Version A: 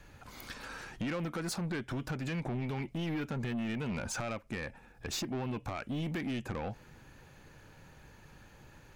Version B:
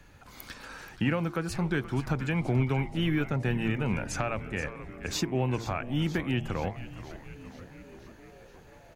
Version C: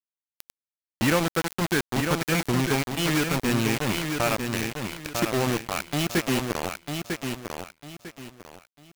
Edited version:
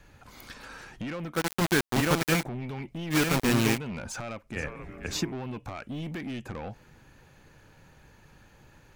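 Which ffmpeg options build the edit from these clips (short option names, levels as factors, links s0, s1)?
-filter_complex "[2:a]asplit=2[s0][s1];[0:a]asplit=4[s2][s3][s4][s5];[s2]atrim=end=1.45[s6];[s0]atrim=start=1.29:end=2.49[s7];[s3]atrim=start=2.33:end=3.16[s8];[s1]atrim=start=3.1:end=3.79[s9];[s4]atrim=start=3.73:end=4.562[s10];[1:a]atrim=start=4.558:end=5.322[s11];[s5]atrim=start=5.318[s12];[s6][s7]acrossfade=d=0.16:c1=tri:c2=tri[s13];[s13][s8]acrossfade=d=0.16:c1=tri:c2=tri[s14];[s14][s9]acrossfade=d=0.06:c1=tri:c2=tri[s15];[s15][s10]acrossfade=d=0.06:c1=tri:c2=tri[s16];[s16][s11]acrossfade=d=0.004:c1=hsin:c2=hsin[s17];[s17][s12]acrossfade=d=0.004:c1=hsin:c2=hsin"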